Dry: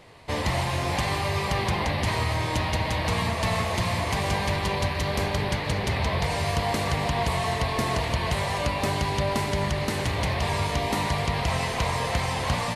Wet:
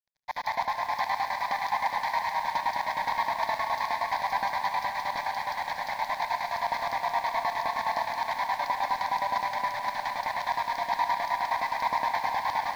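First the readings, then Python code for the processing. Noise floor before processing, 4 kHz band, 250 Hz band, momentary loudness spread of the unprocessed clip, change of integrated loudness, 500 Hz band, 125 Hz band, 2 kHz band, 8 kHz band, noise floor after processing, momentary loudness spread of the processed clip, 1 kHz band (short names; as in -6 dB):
-29 dBFS, -8.5 dB, -20.0 dB, 1 LU, -3.0 dB, -8.5 dB, -28.5 dB, -2.5 dB, -12.5 dB, -38 dBFS, 3 LU, +2.5 dB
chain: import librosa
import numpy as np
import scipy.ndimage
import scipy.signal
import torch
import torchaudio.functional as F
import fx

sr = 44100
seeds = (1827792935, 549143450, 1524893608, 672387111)

p1 = fx.highpass(x, sr, hz=190.0, slope=6)
p2 = fx.low_shelf_res(p1, sr, hz=630.0, db=-12.5, q=3.0)
p3 = 10.0 ** (-27.5 / 20.0) * np.tanh(p2 / 10.0 ** (-27.5 / 20.0))
p4 = p2 + (p3 * 10.0 ** (-5.0 / 20.0))
p5 = fx.air_absorb(p4, sr, metres=200.0)
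p6 = fx.filter_lfo_highpass(p5, sr, shape='square', hz=9.6, low_hz=330.0, high_hz=5000.0, q=1.7)
p7 = np.sign(p6) * np.maximum(np.abs(p6) - 10.0 ** (-38.0 / 20.0), 0.0)
p8 = fx.fixed_phaser(p7, sr, hz=1900.0, stages=8)
p9 = p8 + fx.echo_feedback(p8, sr, ms=75, feedback_pct=57, wet_db=-13.0, dry=0)
y = fx.echo_crushed(p9, sr, ms=236, feedback_pct=80, bits=8, wet_db=-9)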